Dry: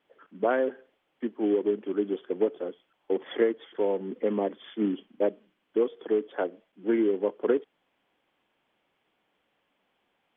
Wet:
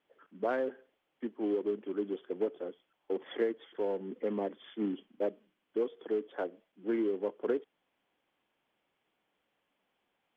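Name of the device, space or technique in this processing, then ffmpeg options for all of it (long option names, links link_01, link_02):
parallel distortion: -filter_complex "[0:a]asplit=2[link_01][link_02];[link_02]asoftclip=type=hard:threshold=-26.5dB,volume=-10.5dB[link_03];[link_01][link_03]amix=inputs=2:normalize=0,volume=-8dB"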